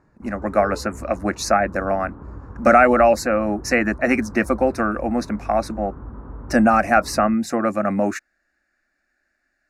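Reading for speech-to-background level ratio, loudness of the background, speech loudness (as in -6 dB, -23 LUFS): 18.5 dB, -38.5 LUFS, -20.0 LUFS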